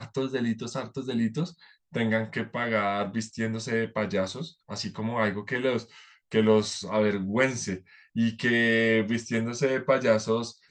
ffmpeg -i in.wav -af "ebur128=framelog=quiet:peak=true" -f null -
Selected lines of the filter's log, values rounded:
Integrated loudness:
  I:         -27.3 LUFS
  Threshold: -37.5 LUFS
Loudness range:
  LRA:         4.2 LU
  Threshold: -47.7 LUFS
  LRA low:   -29.7 LUFS
  LRA high:  -25.5 LUFS
True peak:
  Peak:       -9.7 dBFS